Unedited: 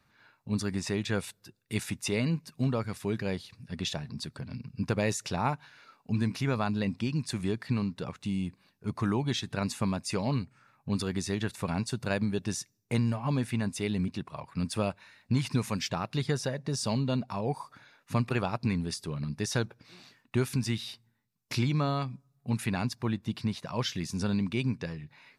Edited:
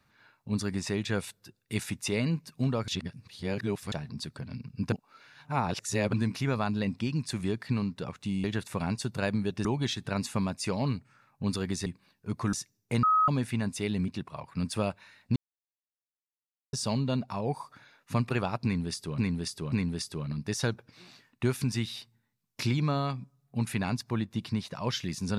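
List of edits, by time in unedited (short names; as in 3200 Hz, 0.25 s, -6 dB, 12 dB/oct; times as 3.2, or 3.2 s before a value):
2.88–3.92 reverse
4.92–6.13 reverse
8.44–9.11 swap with 11.32–12.53
13.03–13.28 bleep 1270 Hz -20 dBFS
15.36–16.73 mute
18.64–19.18 loop, 3 plays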